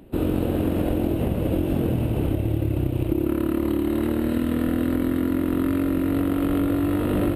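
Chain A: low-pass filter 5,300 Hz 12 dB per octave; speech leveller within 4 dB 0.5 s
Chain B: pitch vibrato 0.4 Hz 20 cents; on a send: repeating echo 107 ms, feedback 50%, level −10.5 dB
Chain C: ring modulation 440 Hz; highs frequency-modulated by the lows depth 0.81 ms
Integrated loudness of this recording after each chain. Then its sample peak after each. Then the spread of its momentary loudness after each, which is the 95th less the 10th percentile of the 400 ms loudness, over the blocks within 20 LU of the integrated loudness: −23.5, −23.0, −26.5 LKFS; −10.0, −10.0, −11.0 dBFS; 0, 3, 1 LU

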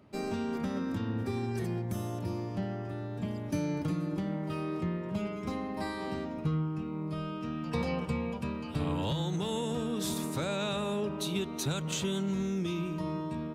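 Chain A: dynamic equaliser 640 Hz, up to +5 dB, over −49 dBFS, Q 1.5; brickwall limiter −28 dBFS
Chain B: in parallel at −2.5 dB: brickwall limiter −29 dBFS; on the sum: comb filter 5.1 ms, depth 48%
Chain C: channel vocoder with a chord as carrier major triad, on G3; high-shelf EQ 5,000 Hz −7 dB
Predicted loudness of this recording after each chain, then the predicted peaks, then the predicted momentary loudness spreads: −36.5, −29.0, −35.5 LKFS; −28.0, −15.0, −20.5 dBFS; 2, 5, 7 LU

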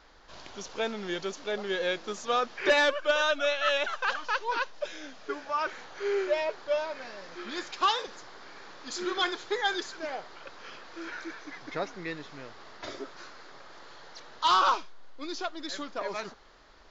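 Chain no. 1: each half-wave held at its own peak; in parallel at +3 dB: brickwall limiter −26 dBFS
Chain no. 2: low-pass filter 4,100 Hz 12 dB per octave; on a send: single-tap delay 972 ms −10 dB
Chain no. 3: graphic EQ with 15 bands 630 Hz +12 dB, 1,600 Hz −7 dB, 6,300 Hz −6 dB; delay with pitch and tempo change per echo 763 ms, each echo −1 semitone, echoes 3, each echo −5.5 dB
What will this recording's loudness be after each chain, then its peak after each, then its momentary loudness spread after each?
−22.0, −30.5, −25.0 LKFS; −12.0, −14.0, −5.0 dBFS; 17, 20, 18 LU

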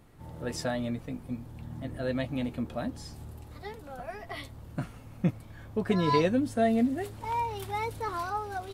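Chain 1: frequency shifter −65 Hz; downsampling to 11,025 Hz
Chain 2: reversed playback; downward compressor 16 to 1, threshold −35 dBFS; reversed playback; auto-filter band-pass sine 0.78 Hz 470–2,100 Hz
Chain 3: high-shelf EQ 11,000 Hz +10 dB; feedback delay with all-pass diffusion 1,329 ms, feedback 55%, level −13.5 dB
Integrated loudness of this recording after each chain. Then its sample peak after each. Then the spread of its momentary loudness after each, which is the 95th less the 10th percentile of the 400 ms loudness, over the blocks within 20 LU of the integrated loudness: −32.0, −49.5, −31.5 LKFS; −12.5, −32.0, −11.5 dBFS; 19, 17, 16 LU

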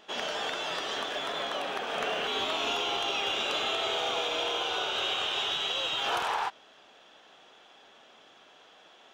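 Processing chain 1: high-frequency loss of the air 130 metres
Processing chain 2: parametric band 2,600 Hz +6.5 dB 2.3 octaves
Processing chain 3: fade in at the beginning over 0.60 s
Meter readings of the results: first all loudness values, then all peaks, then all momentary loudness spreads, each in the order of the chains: −31.5, −24.5, −30.0 LKFS; −19.5, −14.5, −19.0 dBFS; 4, 5, 4 LU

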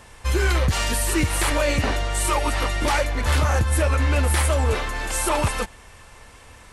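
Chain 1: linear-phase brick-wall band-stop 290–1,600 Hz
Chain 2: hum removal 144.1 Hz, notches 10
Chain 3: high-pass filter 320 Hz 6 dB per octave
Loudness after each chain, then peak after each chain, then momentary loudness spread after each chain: −23.5, −22.0, −24.5 LKFS; −10.5, −12.5, −11.0 dBFS; 5, 5, 4 LU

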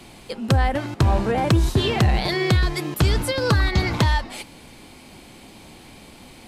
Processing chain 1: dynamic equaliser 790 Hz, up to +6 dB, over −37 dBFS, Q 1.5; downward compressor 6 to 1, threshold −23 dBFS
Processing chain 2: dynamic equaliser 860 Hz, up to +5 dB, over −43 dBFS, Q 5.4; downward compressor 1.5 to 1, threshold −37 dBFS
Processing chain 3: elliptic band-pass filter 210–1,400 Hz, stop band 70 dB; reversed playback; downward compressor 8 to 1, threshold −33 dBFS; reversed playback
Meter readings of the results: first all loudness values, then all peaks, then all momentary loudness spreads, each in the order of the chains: −27.5, −28.5, −37.5 LKFS; −10.5, −14.0, −22.0 dBFS; 18, 17, 13 LU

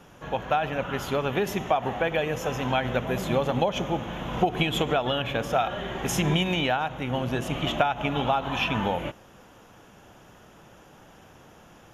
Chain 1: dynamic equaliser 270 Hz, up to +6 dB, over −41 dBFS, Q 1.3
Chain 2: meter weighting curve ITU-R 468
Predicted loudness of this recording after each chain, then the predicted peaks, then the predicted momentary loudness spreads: −25.0, −24.5 LKFS; −7.5, −5.0 dBFS; 5, 9 LU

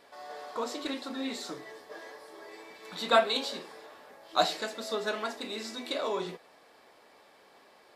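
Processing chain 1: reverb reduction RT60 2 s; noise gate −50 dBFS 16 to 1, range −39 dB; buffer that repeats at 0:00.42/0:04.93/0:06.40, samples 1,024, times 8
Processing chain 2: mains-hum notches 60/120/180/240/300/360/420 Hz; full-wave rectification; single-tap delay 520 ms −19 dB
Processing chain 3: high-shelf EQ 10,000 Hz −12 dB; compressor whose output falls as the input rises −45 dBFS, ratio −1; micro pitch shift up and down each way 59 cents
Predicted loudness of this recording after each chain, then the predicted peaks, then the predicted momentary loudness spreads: −32.5, −36.5, −46.0 LKFS; −10.0, −10.0, −29.0 dBFS; 22, 21, 11 LU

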